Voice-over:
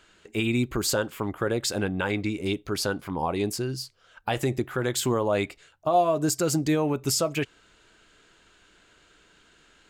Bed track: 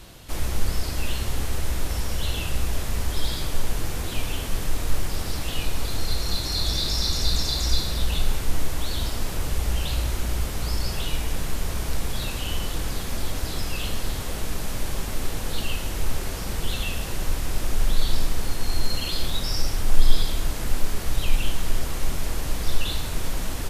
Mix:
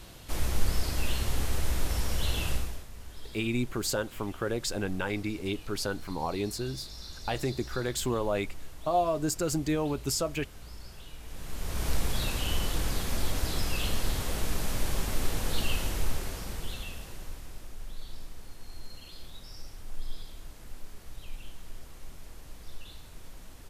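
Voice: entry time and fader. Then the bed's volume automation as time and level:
3.00 s, -5.0 dB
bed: 2.52 s -3 dB
2.88 s -19.5 dB
11.18 s -19.5 dB
11.87 s -2 dB
15.82 s -2 dB
17.76 s -20 dB

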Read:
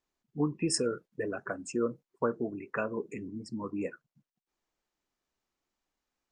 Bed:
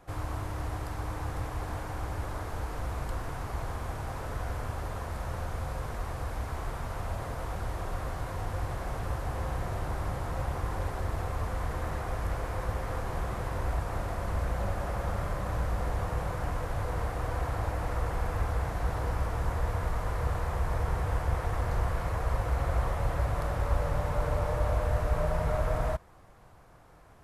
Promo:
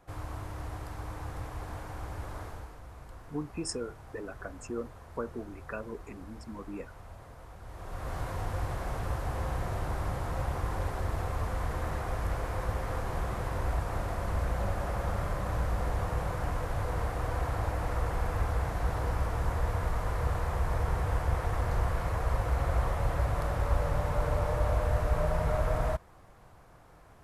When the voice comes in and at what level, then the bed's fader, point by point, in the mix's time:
2.95 s, -6.0 dB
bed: 2.45 s -4.5 dB
2.8 s -13.5 dB
7.6 s -13.5 dB
8.16 s 0 dB

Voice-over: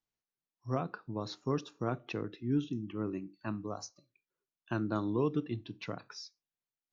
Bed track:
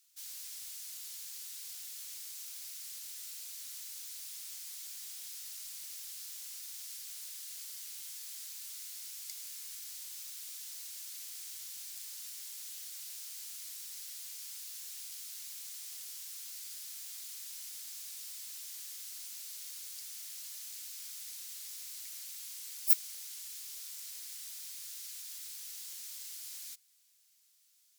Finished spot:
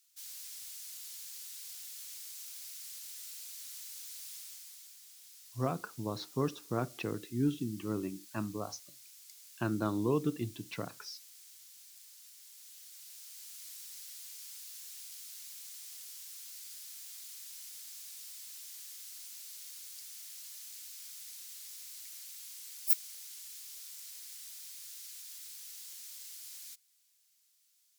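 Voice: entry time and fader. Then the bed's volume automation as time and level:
4.90 s, +0.5 dB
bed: 4.35 s -1 dB
5 s -10 dB
12.36 s -10 dB
13.72 s -2.5 dB

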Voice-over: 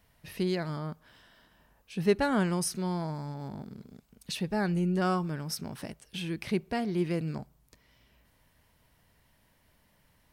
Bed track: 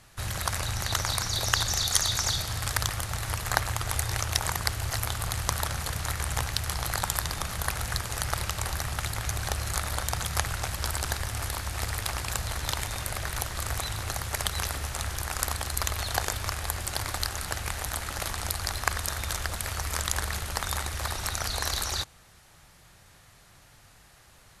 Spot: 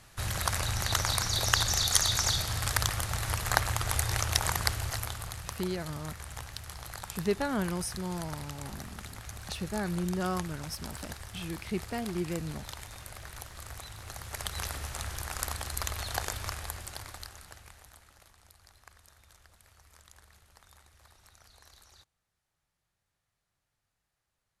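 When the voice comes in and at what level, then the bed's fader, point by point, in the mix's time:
5.20 s, -4.0 dB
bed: 4.68 s -0.5 dB
5.55 s -12.5 dB
13.96 s -12.5 dB
14.64 s -5 dB
16.5 s -5 dB
18.34 s -28 dB

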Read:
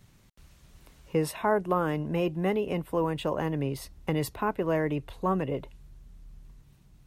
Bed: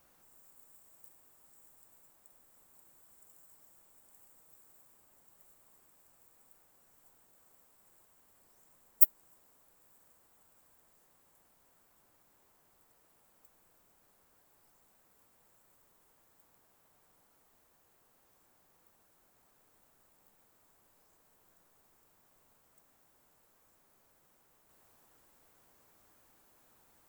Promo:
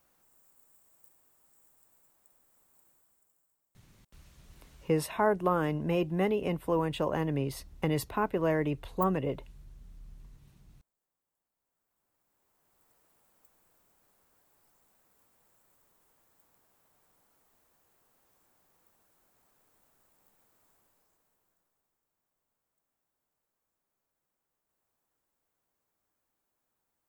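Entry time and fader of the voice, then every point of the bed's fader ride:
3.75 s, -1.0 dB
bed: 2.89 s -3.5 dB
3.72 s -20.5 dB
11.47 s -20.5 dB
12.88 s -1 dB
20.74 s -1 dB
22.02 s -16.5 dB

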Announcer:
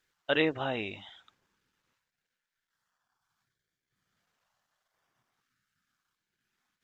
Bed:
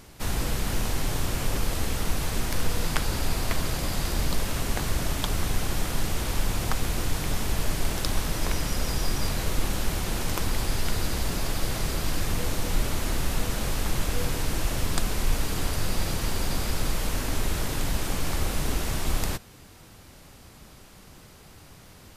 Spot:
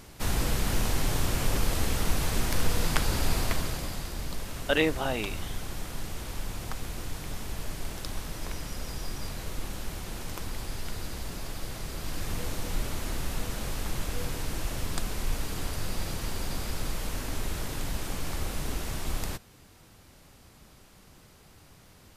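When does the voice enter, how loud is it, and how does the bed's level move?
4.40 s, +2.0 dB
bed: 3.39 s 0 dB
4.1 s -9 dB
11.88 s -9 dB
12.33 s -5.5 dB

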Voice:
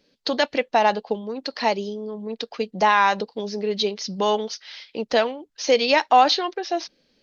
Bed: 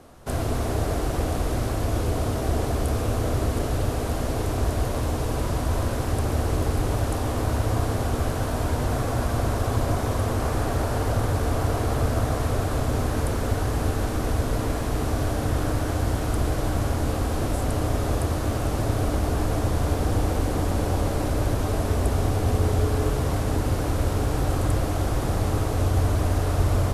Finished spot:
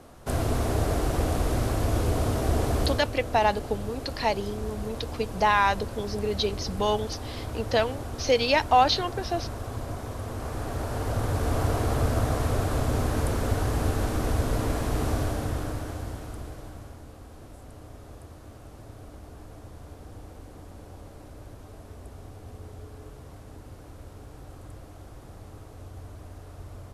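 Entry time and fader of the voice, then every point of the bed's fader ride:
2.60 s, -4.0 dB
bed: 2.84 s -0.5 dB
3.11 s -10.5 dB
10.2 s -10.5 dB
11.59 s -1.5 dB
15.12 s -1.5 dB
17.08 s -21 dB

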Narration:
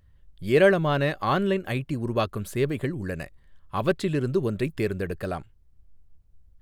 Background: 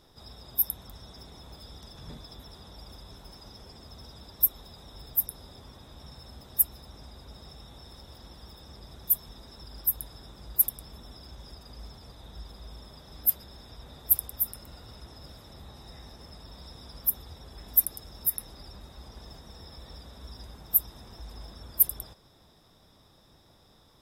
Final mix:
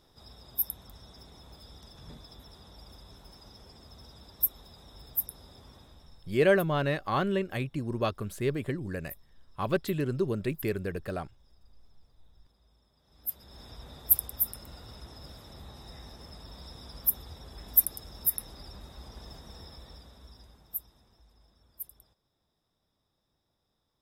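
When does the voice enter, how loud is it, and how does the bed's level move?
5.85 s, -4.5 dB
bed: 5.79 s -4 dB
6.56 s -21.5 dB
12.95 s -21.5 dB
13.62 s 0 dB
19.59 s 0 dB
21.36 s -19.5 dB

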